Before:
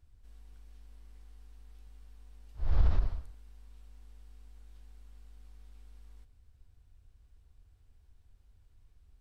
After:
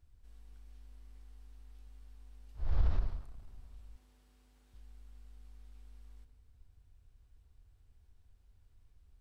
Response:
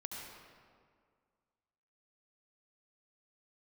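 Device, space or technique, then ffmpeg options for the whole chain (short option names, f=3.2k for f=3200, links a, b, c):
saturated reverb return: -filter_complex "[0:a]asplit=2[a][b];[1:a]atrim=start_sample=2205[c];[b][c]afir=irnorm=-1:irlink=0,asoftclip=type=tanh:threshold=-34.5dB,volume=-6dB[d];[a][d]amix=inputs=2:normalize=0,asettb=1/sr,asplit=3[e][f][g];[e]atrim=end=3.964[h];[f]atrim=start=3.96:end=4.74,asetpts=PTS-STARTPTS,afade=t=in:d=0.004:c=qsin,afade=t=out:st=0.776:d=0.004:c=qsin,highpass=100[i];[g]atrim=start=4.736[j];[h][i]acrossfade=d=0.004:c1=hsin:c2=qsin[k];[k][j]acrossfade=d=0.004:c1=qsin:c2=hsin,volume=-4.5dB"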